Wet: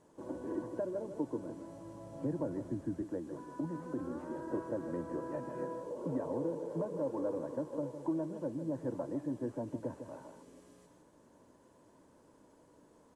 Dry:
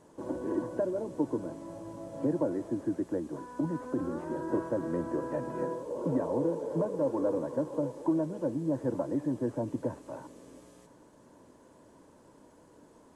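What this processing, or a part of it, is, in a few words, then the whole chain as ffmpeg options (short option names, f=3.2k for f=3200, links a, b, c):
ducked delay: -filter_complex "[0:a]asplit=3[a][b][c];[b]adelay=155,volume=-6dB[d];[c]apad=whole_len=587105[e];[d][e]sidechaincompress=threshold=-32dB:ratio=8:attack=16:release=491[f];[a][f]amix=inputs=2:normalize=0,asettb=1/sr,asplit=3[g][h][i];[g]atrim=end=1.644[j];[h]atrim=start=1.64:end=3.02,asetpts=PTS-STARTPTS,afade=t=in:d=0.004:c=qsin,afade=t=out:st=1.376:d=0.004:c=qsin,asubboost=boost=7:cutoff=200[k];[i]atrim=start=3.016[l];[j][k]acrossfade=d=0.004:c1=hsin:c2=qsin[m];[m][l]acrossfade=d=0.004:c1=qsin:c2=hsin,volume=-6.5dB"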